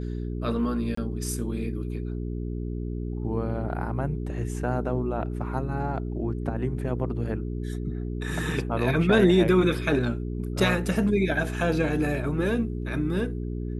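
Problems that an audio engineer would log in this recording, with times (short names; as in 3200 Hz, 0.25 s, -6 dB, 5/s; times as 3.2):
hum 60 Hz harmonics 7 -31 dBFS
0.95–0.97 gap 24 ms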